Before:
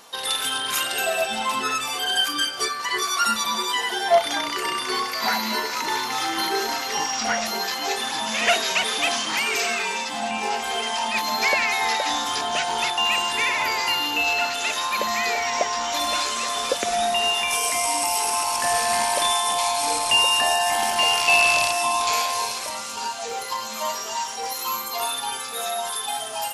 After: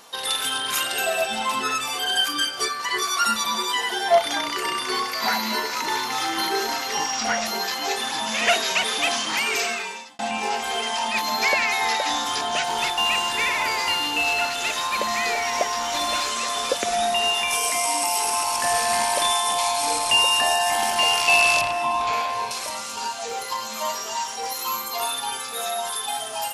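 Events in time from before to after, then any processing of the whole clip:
9.59–10.19 fade out
12.64–16.3 CVSD 64 kbps
17.72–18.18 HPF 120 Hz
21.61–22.51 tone controls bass +4 dB, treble -15 dB

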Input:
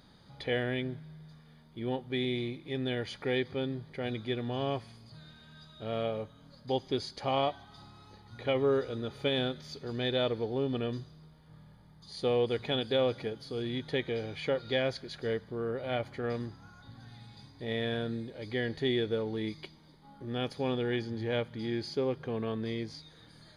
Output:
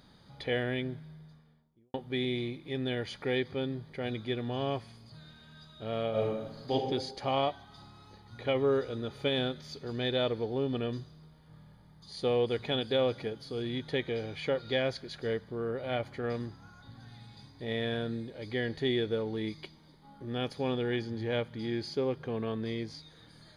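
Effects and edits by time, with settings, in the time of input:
1.03–1.94 studio fade out
6.1–6.72 reverb throw, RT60 1 s, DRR -6.5 dB

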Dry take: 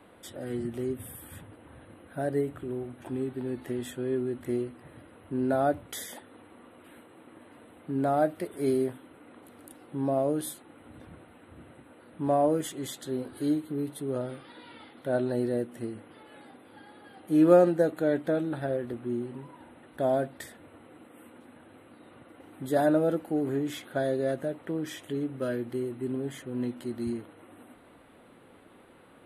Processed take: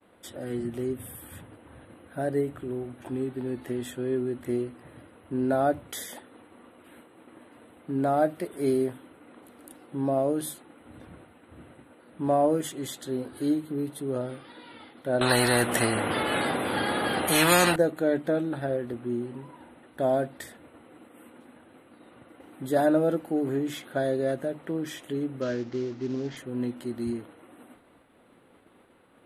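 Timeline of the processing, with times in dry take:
15.21–17.76 spectral compressor 4:1
25.41–26.37 CVSD 32 kbps
whole clip: expander -50 dBFS; notches 50/100/150 Hz; gain +1.5 dB

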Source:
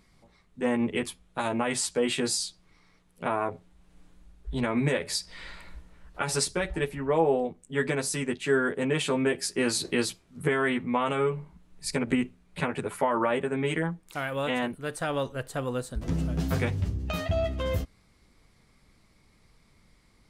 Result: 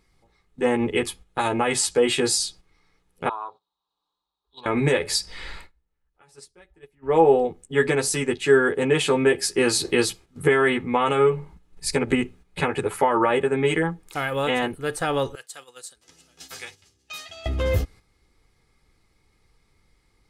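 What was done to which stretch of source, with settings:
3.29–4.66 double band-pass 2000 Hz, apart 1.9 oct
5.57–7.16 dip -23.5 dB, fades 0.15 s
15.35–17.46 band-pass 6800 Hz, Q 0.82
whole clip: gate -49 dBFS, range -9 dB; comb 2.4 ms, depth 43%; gain +5.5 dB

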